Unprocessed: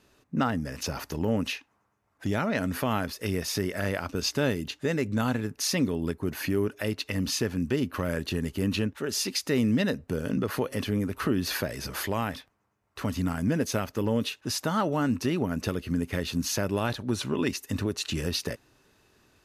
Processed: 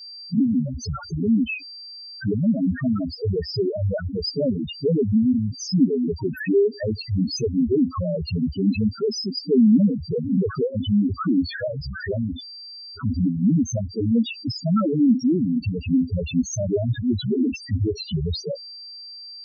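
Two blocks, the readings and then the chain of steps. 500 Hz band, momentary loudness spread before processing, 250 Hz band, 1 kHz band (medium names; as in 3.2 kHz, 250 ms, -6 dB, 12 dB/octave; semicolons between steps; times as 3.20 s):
+5.5 dB, 5 LU, +8.5 dB, -5.5 dB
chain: power-law waveshaper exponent 0.7; whistle 4.7 kHz -45 dBFS; loudest bins only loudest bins 2; trim +9 dB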